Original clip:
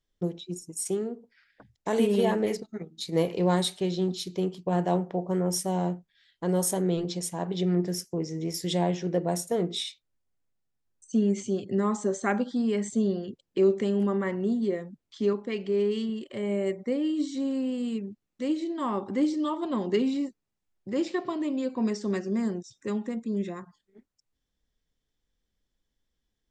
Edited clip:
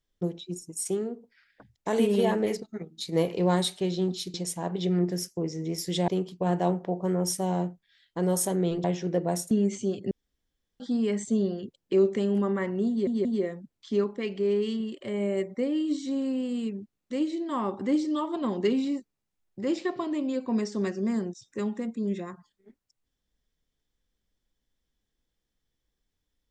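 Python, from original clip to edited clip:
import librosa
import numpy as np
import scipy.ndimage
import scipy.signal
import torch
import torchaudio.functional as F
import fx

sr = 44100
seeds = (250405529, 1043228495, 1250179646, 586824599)

y = fx.edit(x, sr, fx.move(start_s=7.1, length_s=1.74, to_s=4.34),
    fx.cut(start_s=9.51, length_s=1.65),
    fx.room_tone_fill(start_s=11.76, length_s=0.69),
    fx.stutter(start_s=14.54, slice_s=0.18, count=3), tone=tone)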